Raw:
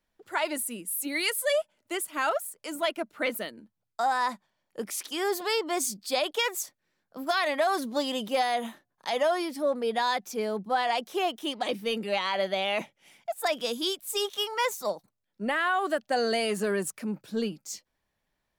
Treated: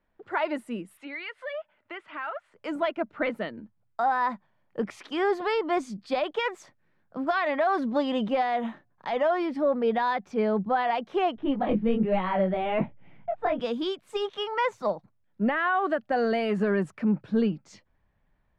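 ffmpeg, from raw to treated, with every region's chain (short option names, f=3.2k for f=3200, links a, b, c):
-filter_complex "[0:a]asettb=1/sr,asplit=3[a][b][c];[a]atrim=end=0.974[d];[b]atrim=start=0.97:end=2.54,asetpts=PTS-STARTPTS,afade=t=in:d=0.004:c=qsin,afade=t=out:st=1.566:d=0.004:c=qsin,lowpass=2.5k,tiltshelf=f=800:g=-9,acompressor=threshold=-42dB:ratio=2.5:attack=3.2:release=140:knee=1:detection=peak[e];[c]atrim=start=2.536[f];[d][e]acrossfade=d=0.004:c1=hsin:c2=qsin[g];[g][f]acrossfade=d=0.004:c1=qsin:c2=hsin,asettb=1/sr,asplit=3[h][i][j];[h]atrim=end=11.364[k];[i]atrim=start=11.36:end=13.6,asetpts=PTS-STARTPTS,afade=t=in:d=0.004:c=qsin,afade=t=out:st=2.236:d=0.004:c=qsin,flanger=delay=16:depth=7.4:speed=1.2,lowpass=4.1k,aemphasis=mode=reproduction:type=riaa[l];[j]atrim=start=13.596[m];[k][l]acrossfade=d=0.004:c1=hsin:c2=qsin[n];[n][m]acrossfade=d=0.004:c1=qsin:c2=hsin,alimiter=limit=-21dB:level=0:latency=1:release=259,asubboost=boost=2:cutoff=210,lowpass=1.9k,volume=6dB"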